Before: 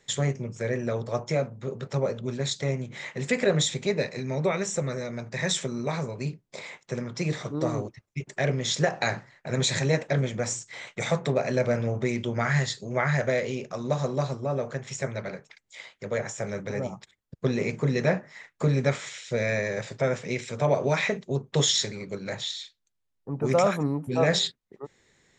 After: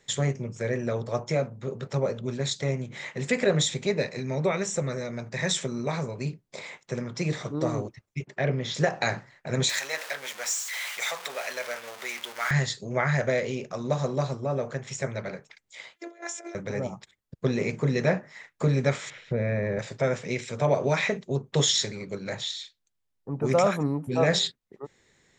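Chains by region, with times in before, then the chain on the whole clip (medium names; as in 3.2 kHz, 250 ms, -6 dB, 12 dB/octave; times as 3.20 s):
8.25–8.75 s: high-pass 50 Hz + distance through air 180 m
9.69–12.51 s: jump at every zero crossing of -30 dBFS + high-pass 1.1 kHz
15.96–16.55 s: compressor with a negative ratio -35 dBFS, ratio -0.5 + robot voice 342 Hz + brick-wall FIR high-pass 270 Hz
19.10–19.79 s: low-pass 2.2 kHz + bass shelf 410 Hz +10.5 dB + compression 2.5:1, threshold -25 dBFS
whole clip: none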